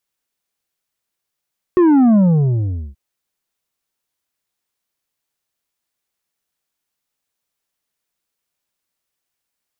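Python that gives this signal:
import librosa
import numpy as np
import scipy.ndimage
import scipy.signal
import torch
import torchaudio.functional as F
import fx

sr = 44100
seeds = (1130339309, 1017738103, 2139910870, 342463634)

y = fx.sub_drop(sr, level_db=-9.0, start_hz=370.0, length_s=1.18, drive_db=6.5, fade_s=0.79, end_hz=65.0)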